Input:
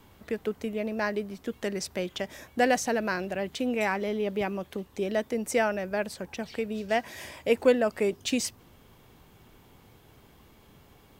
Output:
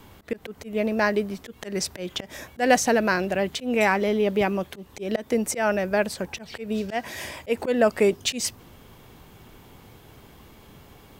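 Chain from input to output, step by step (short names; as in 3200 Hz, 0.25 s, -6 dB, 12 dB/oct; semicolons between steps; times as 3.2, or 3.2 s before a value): auto swell 0.151 s; gain +7 dB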